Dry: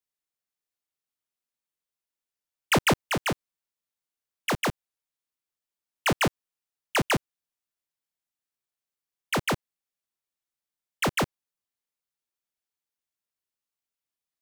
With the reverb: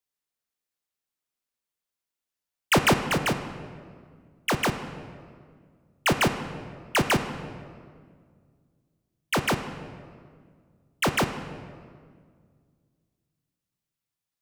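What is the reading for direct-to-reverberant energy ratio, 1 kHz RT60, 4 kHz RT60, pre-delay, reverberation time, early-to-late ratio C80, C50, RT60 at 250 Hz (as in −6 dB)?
8.0 dB, 1.8 s, 1.2 s, 13 ms, 2.0 s, 10.5 dB, 9.5 dB, 2.5 s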